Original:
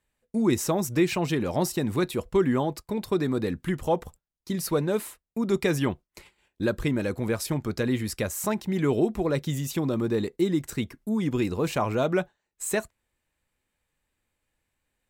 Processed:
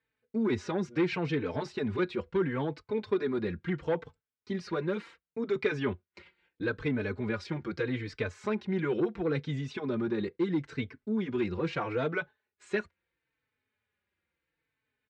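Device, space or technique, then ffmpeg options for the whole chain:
barber-pole flanger into a guitar amplifier: -filter_complex "[0:a]asplit=2[a][b];[b]adelay=4,afreqshift=-0.75[c];[a][c]amix=inputs=2:normalize=1,asoftclip=type=tanh:threshold=-19.5dB,highpass=87,equalizer=f=90:t=q:w=4:g=4,equalizer=f=430:t=q:w=4:g=6,equalizer=f=680:t=q:w=4:g=-5,equalizer=f=1.5k:t=q:w=4:g=7,equalizer=f=2.2k:t=q:w=4:g=5,lowpass=f=4.5k:w=0.5412,lowpass=f=4.5k:w=1.3066,volume=-2.5dB"

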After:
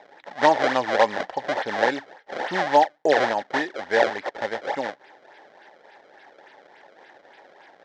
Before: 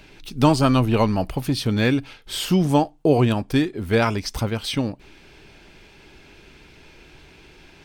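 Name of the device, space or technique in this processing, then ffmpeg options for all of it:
circuit-bent sampling toy: -af "acrusher=samples=28:mix=1:aa=0.000001:lfo=1:lforange=44.8:lforate=3.5,highpass=550,equalizer=f=560:t=q:w=4:g=7,equalizer=f=830:t=q:w=4:g=9,equalizer=f=1.2k:t=q:w=4:g=-6,equalizer=f=1.8k:t=q:w=4:g=10,equalizer=f=2.6k:t=q:w=4:g=-8,equalizer=f=4.5k:t=q:w=4:g=-4,lowpass=f=4.9k:w=0.5412,lowpass=f=4.9k:w=1.3066"

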